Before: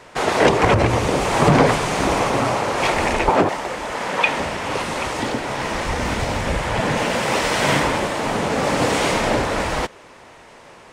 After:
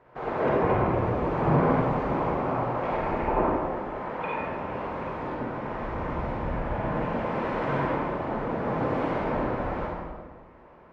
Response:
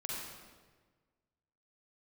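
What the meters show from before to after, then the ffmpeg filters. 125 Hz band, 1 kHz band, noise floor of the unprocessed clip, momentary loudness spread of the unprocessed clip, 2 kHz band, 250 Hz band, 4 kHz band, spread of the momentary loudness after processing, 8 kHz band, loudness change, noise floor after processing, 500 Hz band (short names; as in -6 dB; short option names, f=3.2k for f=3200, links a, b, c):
-6.5 dB, -8.0 dB, -45 dBFS, 8 LU, -14.0 dB, -6.5 dB, -24.5 dB, 9 LU, under -35 dB, -8.5 dB, -51 dBFS, -7.5 dB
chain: -filter_complex "[0:a]lowpass=1.3k[a];[1:a]atrim=start_sample=2205[b];[a][b]afir=irnorm=-1:irlink=0,volume=-8.5dB"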